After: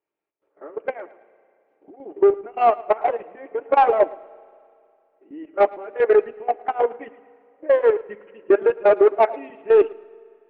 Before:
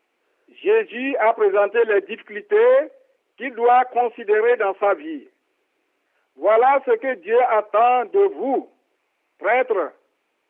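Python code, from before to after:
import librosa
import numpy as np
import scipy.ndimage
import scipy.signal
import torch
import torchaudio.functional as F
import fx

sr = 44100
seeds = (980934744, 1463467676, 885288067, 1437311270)

y = x[::-1].copy()
y = fx.lowpass(y, sr, hz=1100.0, slope=6)
y = fx.low_shelf(y, sr, hz=150.0, db=7.0)
y = fx.level_steps(y, sr, step_db=17)
y = fx.chopper(y, sr, hz=2.5, depth_pct=60, duty_pct=75)
y = fx.notch_comb(y, sr, f0_hz=250.0)
y = 10.0 ** (-14.0 / 20.0) * np.tanh(y / 10.0 ** (-14.0 / 20.0))
y = fx.echo_feedback(y, sr, ms=110, feedback_pct=36, wet_db=-15)
y = fx.rev_spring(y, sr, rt60_s=2.5, pass_ms=(33, 46), chirp_ms=35, drr_db=15.5)
y = fx.upward_expand(y, sr, threshold_db=-38.0, expansion=1.5)
y = F.gain(torch.from_numpy(y), 8.0).numpy()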